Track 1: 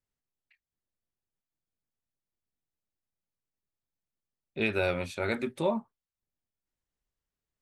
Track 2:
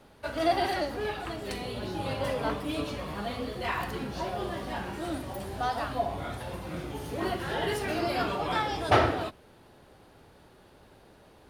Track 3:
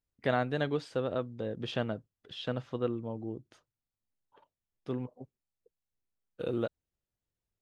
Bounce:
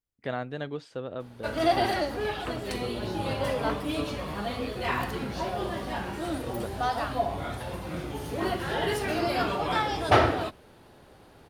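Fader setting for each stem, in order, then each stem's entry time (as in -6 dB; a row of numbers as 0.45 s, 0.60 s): -16.5 dB, +2.0 dB, -3.5 dB; 0.00 s, 1.20 s, 0.00 s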